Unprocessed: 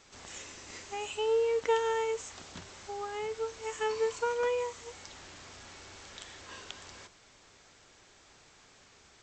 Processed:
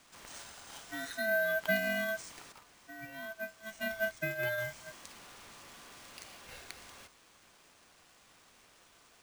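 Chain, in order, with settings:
ring modulation 1,100 Hz
bad sample-rate conversion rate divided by 3×, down none, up hold
0:02.52–0:04.58: expander for the loud parts 1.5 to 1, over −45 dBFS

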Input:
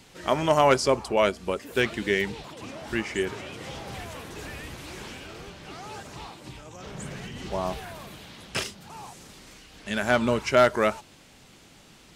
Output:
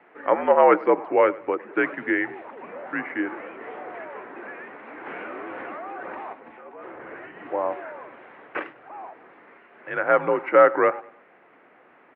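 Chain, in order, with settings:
repeating echo 101 ms, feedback 36%, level −20.5 dB
single-sideband voice off tune −71 Hz 400–2,100 Hz
0:05.06–0:06.33: envelope flattener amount 100%
level +4.5 dB

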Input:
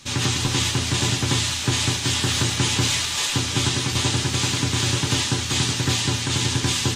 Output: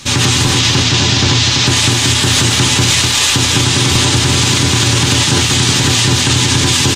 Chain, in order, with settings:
0:00.59–0:01.67: high shelf with overshoot 7,500 Hz −11.5 dB, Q 1.5
single-tap delay 249 ms −7 dB
boost into a limiter +14 dB
level −1 dB

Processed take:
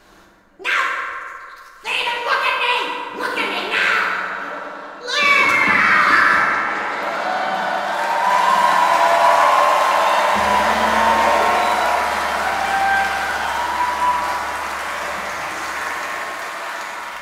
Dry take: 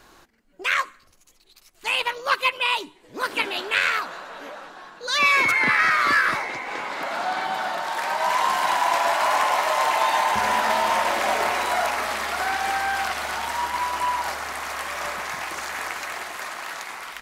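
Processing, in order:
high-shelf EQ 6,500 Hz −5 dB
convolution reverb RT60 2.5 s, pre-delay 5 ms, DRR −3.5 dB
level +1 dB

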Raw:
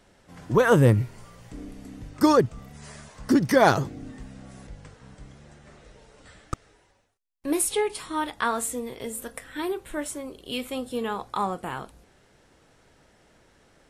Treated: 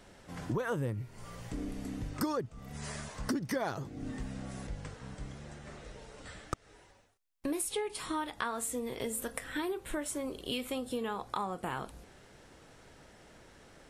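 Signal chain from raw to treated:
downward compressor 6 to 1, threshold −35 dBFS, peak gain reduction 21 dB
level +2.5 dB

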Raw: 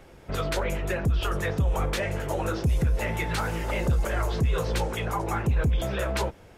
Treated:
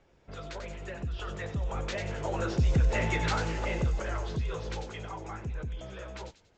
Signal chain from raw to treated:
source passing by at 0:03.01, 9 m/s, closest 5.3 metres
Butterworth low-pass 7,500 Hz 72 dB per octave
delay with a high-pass on its return 93 ms, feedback 38%, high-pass 3,100 Hz, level −5 dB

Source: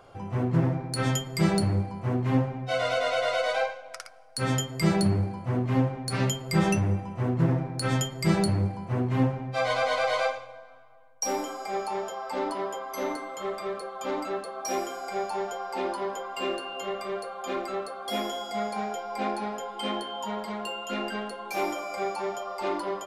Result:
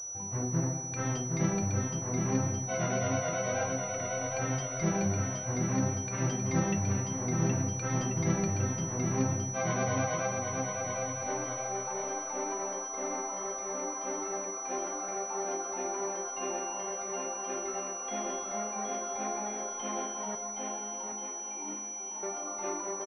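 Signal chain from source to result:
0:20.35–0:22.23: formant filter u
bouncing-ball delay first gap 770 ms, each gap 0.8×, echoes 5
switching amplifier with a slow clock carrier 5,900 Hz
level −7 dB

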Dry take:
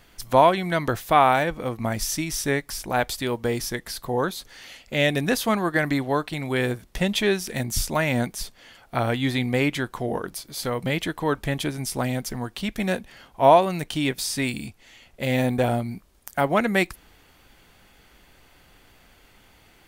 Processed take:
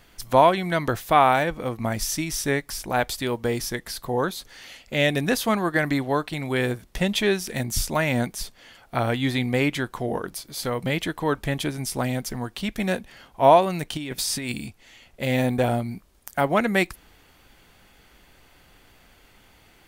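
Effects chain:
0:13.97–0:14.52: compressor whose output falls as the input rises −29 dBFS, ratio −1

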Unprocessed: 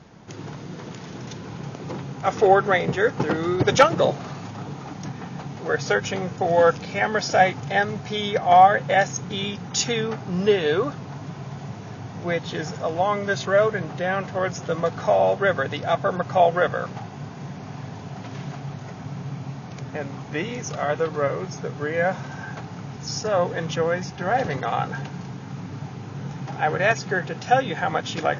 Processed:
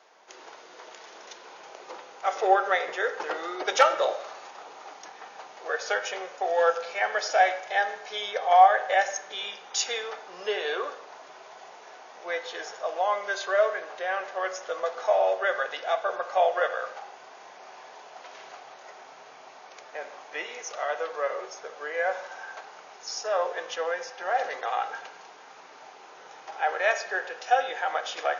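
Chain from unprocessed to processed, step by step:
high-pass filter 510 Hz 24 dB per octave
on a send: convolution reverb RT60 0.80 s, pre-delay 3 ms, DRR 7.5 dB
on the sum: level −4 dB

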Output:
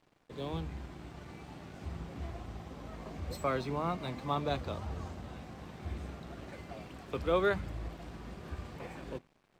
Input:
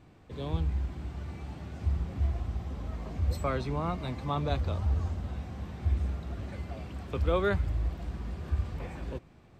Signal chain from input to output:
parametric band 72 Hz −13.5 dB 1.1 octaves
mains-hum notches 50/100/150/200/250 Hz
dead-zone distortion −58.5 dBFS

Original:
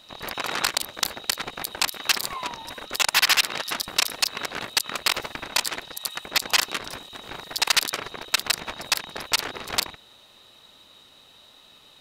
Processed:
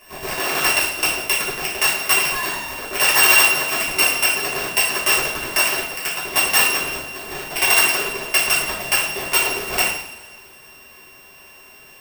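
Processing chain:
samples sorted by size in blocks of 16 samples
coupled-rooms reverb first 0.61 s, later 2.2 s, DRR −9 dB
level −1 dB

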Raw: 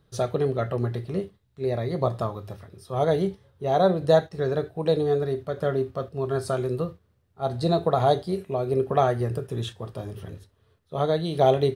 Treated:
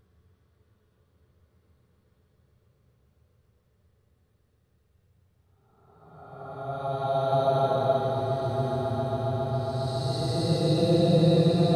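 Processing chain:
extreme stretch with random phases 17×, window 0.10 s, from 0:07.01
echo that builds up and dies away 137 ms, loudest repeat 8, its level −14.5 dB

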